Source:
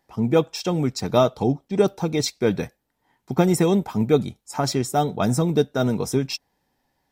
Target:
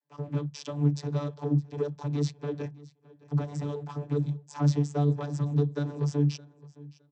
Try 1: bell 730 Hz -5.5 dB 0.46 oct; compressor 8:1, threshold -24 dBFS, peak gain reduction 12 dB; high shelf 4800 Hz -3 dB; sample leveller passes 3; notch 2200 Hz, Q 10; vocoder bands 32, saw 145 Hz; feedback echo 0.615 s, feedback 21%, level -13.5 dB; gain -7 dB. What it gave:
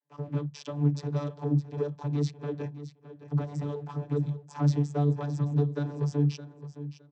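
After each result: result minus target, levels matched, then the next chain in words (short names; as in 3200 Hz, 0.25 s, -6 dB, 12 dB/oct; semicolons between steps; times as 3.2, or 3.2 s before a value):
echo-to-direct +8 dB; 8000 Hz band -4.0 dB
bell 730 Hz -5.5 dB 0.46 oct; compressor 8:1, threshold -24 dBFS, peak gain reduction 12 dB; high shelf 4800 Hz -3 dB; sample leveller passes 3; notch 2200 Hz, Q 10; vocoder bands 32, saw 145 Hz; feedback echo 0.615 s, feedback 21%, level -21.5 dB; gain -7 dB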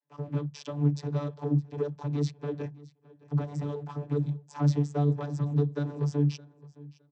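8000 Hz band -4.0 dB
bell 730 Hz -5.5 dB 0.46 oct; compressor 8:1, threshold -24 dBFS, peak gain reduction 12 dB; high shelf 4800 Hz +6 dB; sample leveller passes 3; notch 2200 Hz, Q 10; vocoder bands 32, saw 145 Hz; feedback echo 0.615 s, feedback 21%, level -21.5 dB; gain -7 dB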